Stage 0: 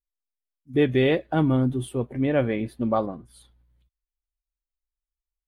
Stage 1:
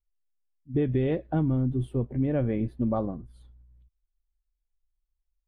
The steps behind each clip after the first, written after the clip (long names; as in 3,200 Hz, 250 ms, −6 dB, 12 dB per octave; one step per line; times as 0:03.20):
spectral tilt −3.5 dB per octave
downward compressor, threshold −15 dBFS, peak gain reduction 6.5 dB
level −6.5 dB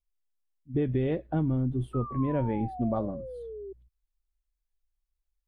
sound drawn into the spectrogram fall, 0:01.93–0:03.73, 380–1,300 Hz −38 dBFS
level −2 dB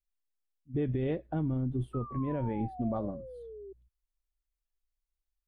brickwall limiter −23.5 dBFS, peak gain reduction 5.5 dB
expander for the loud parts 1.5 to 1, over −39 dBFS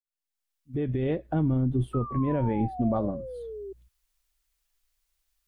fade in at the beginning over 1.43 s
one half of a high-frequency compander encoder only
level +6.5 dB